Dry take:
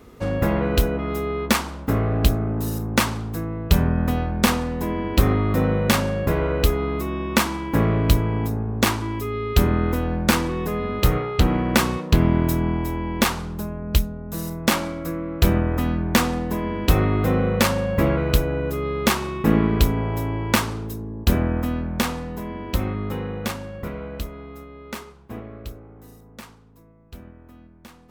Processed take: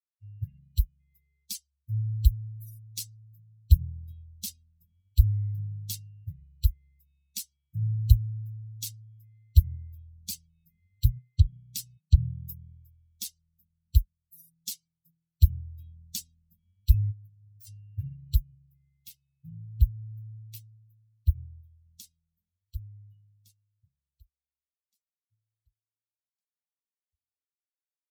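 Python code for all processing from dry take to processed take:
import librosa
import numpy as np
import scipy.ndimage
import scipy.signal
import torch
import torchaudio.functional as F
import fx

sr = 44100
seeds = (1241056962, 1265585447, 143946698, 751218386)

y = fx.chain(x, sr, fx.highpass(hz=46.0, slope=12),
    fx.peak_eq(hz=1100.0, db=-14.0, octaves=2.1),
    fx.overload_stage(gain_db=26.5), at=(17.11, 17.67))
y = fx.chain(y, sr, fx.cheby1_bandstop(low_hz=160.0, high_hz=2000.0, order=2),
    fx.peak_eq(hz=6500.0, db=-5.0, octaves=2.4), at=(18.53, 21.84))
y = fx.bin_expand(y, sr, power=3.0)
y = scipy.signal.sosfilt(scipy.signal.cheby2(4, 70, [340.0, 1300.0], 'bandstop', fs=sr, output='sos'), y)
y = fx.peak_eq(y, sr, hz=120.0, db=13.5, octaves=1.7)
y = y * 10.0 ** (-2.5 / 20.0)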